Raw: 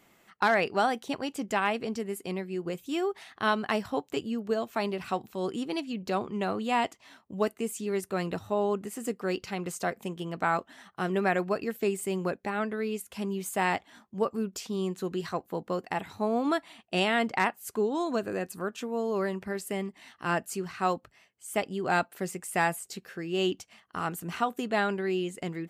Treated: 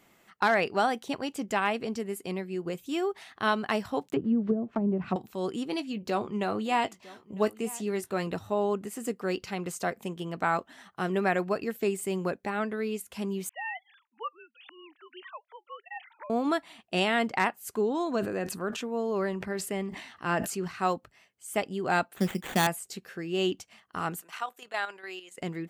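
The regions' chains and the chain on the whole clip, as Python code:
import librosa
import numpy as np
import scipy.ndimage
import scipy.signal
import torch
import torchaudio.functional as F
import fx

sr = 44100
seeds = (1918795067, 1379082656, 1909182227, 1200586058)

y = fx.chain(x, sr, fx.block_float(bits=5),
    fx.env_lowpass_down(base_hz=370.0, full_db=-25.5),
    fx.peak_eq(hz=180.0, db=9.0, octaves=1.4), at=(4.01, 5.16))
y = fx.chain(y, sr, fx.doubler(ms=19.0, db=-12.0),
    fx.echo_single(ms=953, db=-20.5), at=(5.7, 8.27))
y = fx.chain(y, sr, fx.sine_speech(),
    fx.highpass(hz=1400.0, slope=12), at=(13.49, 16.3))
y = fx.chain(y, sr, fx.high_shelf(hz=7600.0, db=-8.0),
    fx.sustainer(db_per_s=65.0), at=(17.81, 20.68))
y = fx.chain(y, sr, fx.peak_eq(hz=210.0, db=13.0, octaves=0.58),
    fx.sample_hold(seeds[0], rate_hz=5200.0, jitter_pct=0), at=(22.16, 22.67))
y = fx.chain(y, sr, fx.highpass(hz=810.0, slope=12),
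    fx.level_steps(step_db=10), at=(24.21, 25.38))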